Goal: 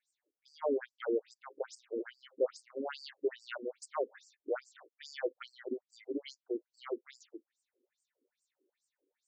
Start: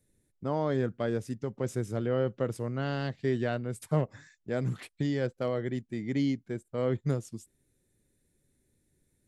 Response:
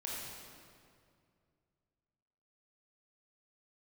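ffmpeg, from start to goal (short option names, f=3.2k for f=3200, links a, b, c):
-filter_complex "[0:a]asettb=1/sr,asplit=3[a][b][c];[a]atrim=end=2.344[d];[b]atrim=start=2.34:end=3.14,asetpts=PTS-STARTPTS,afade=t=in:d=0.004:c=qsin,afade=t=out:st=0.796:d=0.004:c=qsin,asplit=2[e][f];[f]adelay=33,volume=-13dB[g];[e][g]amix=inputs=2:normalize=0,atrim=end_sample=35280[h];[c]atrim=start=3.136[i];[d][h]acrossfade=d=0.004:c1=hsin:c2=qsin[j];[j][i]acrossfade=d=0.004:c1=qsin:c2=hsin,afftfilt=real='re*between(b*sr/1024,360*pow(6400/360,0.5+0.5*sin(2*PI*2.4*pts/sr))/1.41,360*pow(6400/360,0.5+0.5*sin(2*PI*2.4*pts/sr))*1.41)':imag='im*between(b*sr/1024,360*pow(6400/360,0.5+0.5*sin(2*PI*2.4*pts/sr))/1.41,360*pow(6400/360,0.5+0.5*sin(2*PI*2.4*pts/sr))*1.41)':win_size=1024:overlap=0.75,volume=2dB"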